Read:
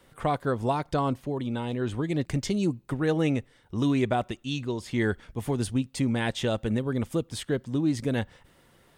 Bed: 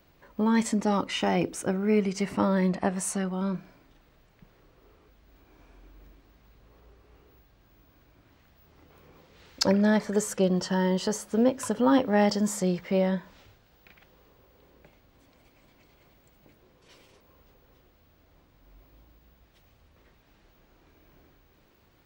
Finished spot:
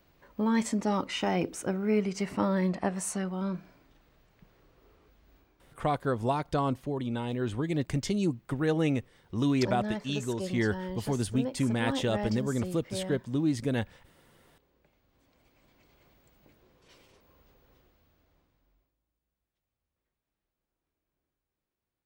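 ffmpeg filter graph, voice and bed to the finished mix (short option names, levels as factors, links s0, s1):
-filter_complex "[0:a]adelay=5600,volume=0.794[s0];[1:a]volume=2,afade=t=out:st=5.34:d=0.22:silence=0.354813,afade=t=in:st=14.85:d=1.14:silence=0.354813,afade=t=out:st=17.75:d=1.2:silence=0.0595662[s1];[s0][s1]amix=inputs=2:normalize=0"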